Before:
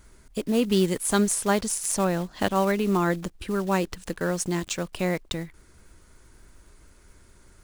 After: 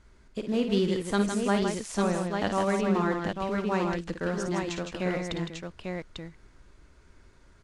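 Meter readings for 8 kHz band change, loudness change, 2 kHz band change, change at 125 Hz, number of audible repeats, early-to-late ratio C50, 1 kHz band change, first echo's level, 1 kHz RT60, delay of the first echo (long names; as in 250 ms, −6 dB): −12.5 dB, −3.0 dB, −2.0 dB, −2.5 dB, 3, no reverb audible, −2.0 dB, −8.0 dB, no reverb audible, 55 ms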